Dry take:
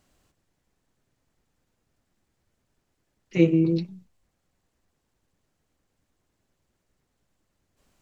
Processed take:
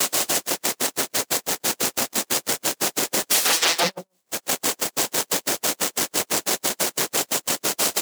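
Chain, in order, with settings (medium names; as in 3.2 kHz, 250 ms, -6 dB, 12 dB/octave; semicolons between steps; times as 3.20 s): companding laws mixed up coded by mu; upward compressor, threshold -22 dBFS; sine folder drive 16 dB, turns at -21.5 dBFS; high-pass 510 Hz 12 dB/octave; peaking EQ 1.4 kHz -8.5 dB 3 oct; delay 141 ms -5.5 dB; tremolo 6 Hz, depth 85%; gate -34 dBFS, range -46 dB; loudness maximiser +29.5 dB; trim -9 dB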